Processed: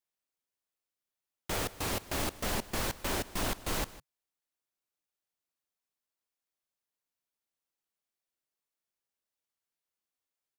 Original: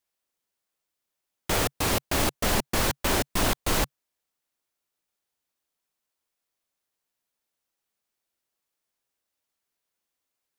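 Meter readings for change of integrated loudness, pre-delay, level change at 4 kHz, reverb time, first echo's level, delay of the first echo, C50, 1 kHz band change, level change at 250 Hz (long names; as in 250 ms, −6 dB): −8.5 dB, no reverb audible, −8.5 dB, no reverb audible, −18.5 dB, 156 ms, no reverb audible, −8.5 dB, −8.5 dB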